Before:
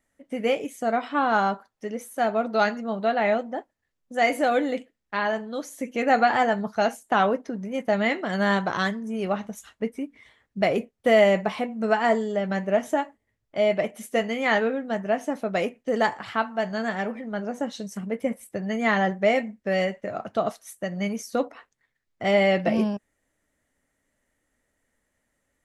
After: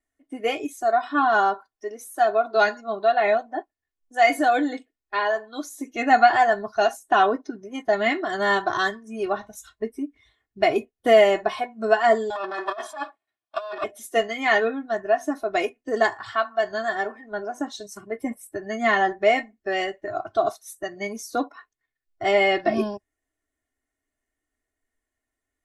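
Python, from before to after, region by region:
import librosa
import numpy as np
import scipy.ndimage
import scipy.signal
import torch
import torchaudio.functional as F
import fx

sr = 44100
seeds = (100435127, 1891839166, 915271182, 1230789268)

y = fx.chain(x, sr, fx.lower_of_two(delay_ms=1.2),
    fx.over_compress(threshold_db=-29.0, ratio=-0.5),
    fx.cabinet(low_hz=350.0, low_slope=12, high_hz=9500.0, hz=(660.0, 1200.0, 3100.0, 6600.0), db=(3, 9, 4, -9)), at=(12.3, 13.84))
y = y + 0.88 * np.pad(y, (int(2.8 * sr / 1000.0), 0))[:len(y)]
y = fx.noise_reduce_blind(y, sr, reduce_db=12)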